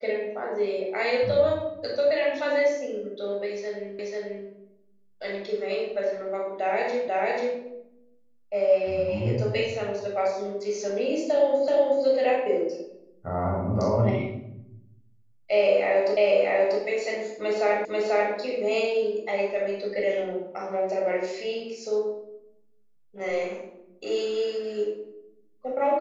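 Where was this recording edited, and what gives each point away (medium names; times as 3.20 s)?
3.99 s: repeat of the last 0.49 s
7.08 s: repeat of the last 0.49 s
11.68 s: repeat of the last 0.37 s
16.17 s: repeat of the last 0.64 s
17.85 s: repeat of the last 0.49 s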